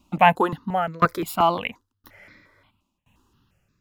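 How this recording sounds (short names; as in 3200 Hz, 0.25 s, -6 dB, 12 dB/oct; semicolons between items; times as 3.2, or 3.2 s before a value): tremolo saw down 0.98 Hz, depth 95%; notches that jump at a steady rate 5.7 Hz 460–3000 Hz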